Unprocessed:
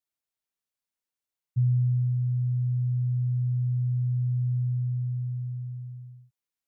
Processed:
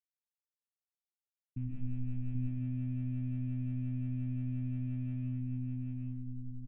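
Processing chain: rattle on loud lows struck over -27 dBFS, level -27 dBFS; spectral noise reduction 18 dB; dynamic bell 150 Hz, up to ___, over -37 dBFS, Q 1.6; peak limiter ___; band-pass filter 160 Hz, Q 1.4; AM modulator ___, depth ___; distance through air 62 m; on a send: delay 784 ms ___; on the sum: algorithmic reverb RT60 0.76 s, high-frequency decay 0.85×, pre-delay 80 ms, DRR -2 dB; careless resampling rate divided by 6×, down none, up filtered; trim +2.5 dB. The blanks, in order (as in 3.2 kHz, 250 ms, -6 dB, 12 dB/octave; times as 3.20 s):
-5 dB, -26.5 dBFS, 130 Hz, 95%, -4 dB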